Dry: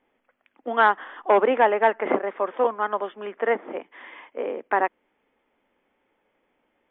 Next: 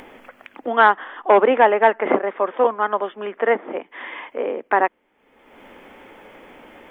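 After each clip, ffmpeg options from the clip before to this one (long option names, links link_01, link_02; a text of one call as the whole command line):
ffmpeg -i in.wav -af "acompressor=mode=upward:threshold=-30dB:ratio=2.5,volume=4.5dB" out.wav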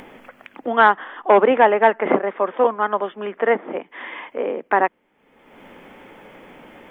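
ffmpeg -i in.wav -af "equalizer=frequency=160:width_type=o:width=0.75:gain=8" out.wav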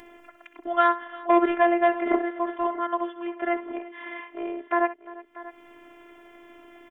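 ffmpeg -i in.wav -af "afftfilt=real='hypot(re,im)*cos(PI*b)':imag='0':win_size=512:overlap=0.75,aecho=1:1:64|348|638:0.2|0.106|0.141,volume=-3dB" out.wav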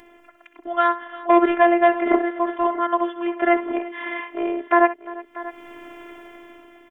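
ffmpeg -i in.wav -af "dynaudnorm=framelen=290:gausssize=7:maxgain=15.5dB,volume=-1dB" out.wav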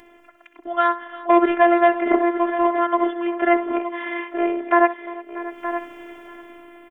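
ffmpeg -i in.wav -af "aecho=1:1:920:0.266" out.wav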